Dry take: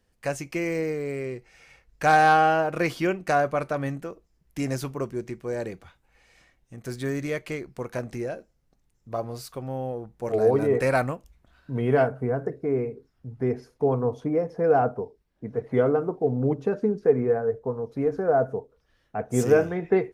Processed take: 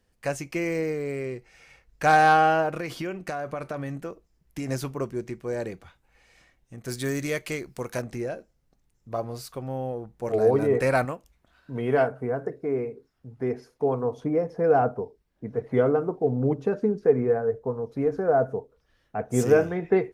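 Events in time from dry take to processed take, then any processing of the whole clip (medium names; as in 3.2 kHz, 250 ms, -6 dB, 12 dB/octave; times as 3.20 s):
2.71–4.69 s: compression 10:1, threshold -27 dBFS
6.88–8.02 s: treble shelf 3.5 kHz +10 dB
11.05–14.18 s: bass shelf 190 Hz -8 dB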